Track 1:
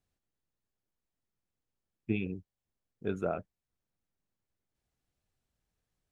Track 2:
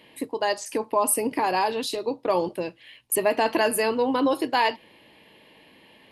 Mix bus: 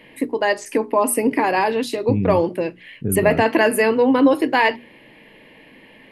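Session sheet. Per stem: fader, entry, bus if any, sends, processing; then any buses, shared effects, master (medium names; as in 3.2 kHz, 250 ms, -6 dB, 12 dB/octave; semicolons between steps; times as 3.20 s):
-4.0 dB, 0.00 s, no send, tilt EQ -4.5 dB/octave; peak limiter -18 dBFS, peak gain reduction 9.5 dB
+0.5 dB, 0.00 s, no send, high-pass 180 Hz 6 dB/octave; hum notches 60/120/180/240/300/360/420 Hz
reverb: none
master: graphic EQ 125/250/500/2000/4000 Hz +12/+8/+5/+10/-4 dB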